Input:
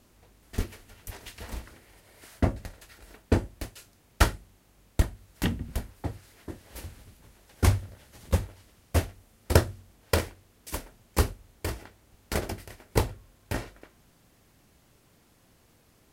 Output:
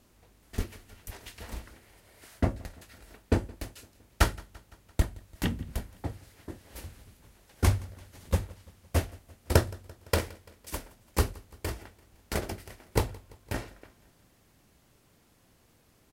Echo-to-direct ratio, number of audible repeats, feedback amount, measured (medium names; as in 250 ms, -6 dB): -21.5 dB, 3, 60%